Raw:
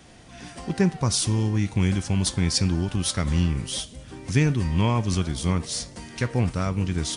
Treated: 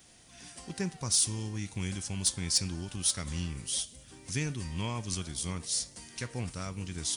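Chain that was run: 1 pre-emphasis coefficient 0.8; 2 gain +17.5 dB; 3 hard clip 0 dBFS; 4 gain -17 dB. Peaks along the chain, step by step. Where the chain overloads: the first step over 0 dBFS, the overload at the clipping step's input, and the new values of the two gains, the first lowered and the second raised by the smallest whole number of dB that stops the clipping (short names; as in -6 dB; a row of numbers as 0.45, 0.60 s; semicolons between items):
-12.0, +5.5, 0.0, -17.0 dBFS; step 2, 5.5 dB; step 2 +11.5 dB, step 4 -11 dB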